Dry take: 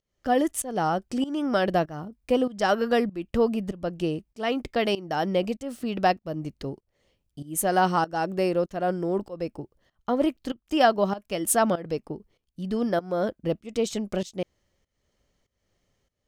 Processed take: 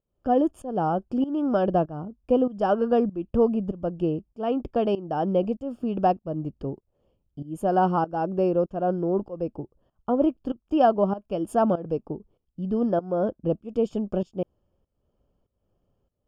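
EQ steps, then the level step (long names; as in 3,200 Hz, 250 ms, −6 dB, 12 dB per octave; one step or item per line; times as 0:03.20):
moving average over 22 samples
+2.5 dB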